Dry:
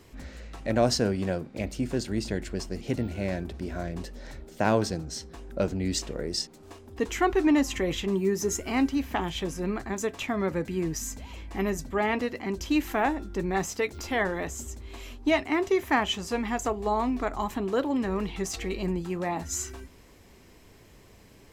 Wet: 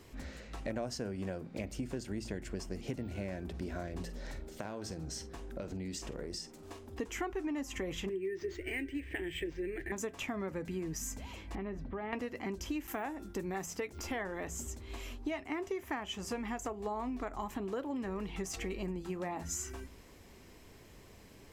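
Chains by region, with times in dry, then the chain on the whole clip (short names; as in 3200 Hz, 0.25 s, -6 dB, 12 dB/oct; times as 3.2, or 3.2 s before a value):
4.03–6.97 compressor, threshold -34 dBFS + doubler 48 ms -14 dB
8.09–9.92 EQ curve 100 Hz 0 dB, 160 Hz -6 dB, 230 Hz -19 dB, 330 Hz +7 dB, 470 Hz -2 dB, 830 Hz -18 dB, 1200 Hz -24 dB, 1800 Hz +8 dB, 2900 Hz +2 dB, 4500 Hz -9 dB + decimation joined by straight lines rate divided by 4×
11.55–12.13 compressor 5:1, threshold -32 dBFS + air absorption 390 m + mismatched tape noise reduction decoder only
12.87–13.66 HPF 74 Hz + high shelf 8500 Hz +11.5 dB + gate with hold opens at -29 dBFS, closes at -33 dBFS
whole clip: de-hum 57.13 Hz, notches 3; dynamic EQ 4000 Hz, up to -7 dB, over -55 dBFS, Q 3.3; compressor, threshold -33 dBFS; gain -2 dB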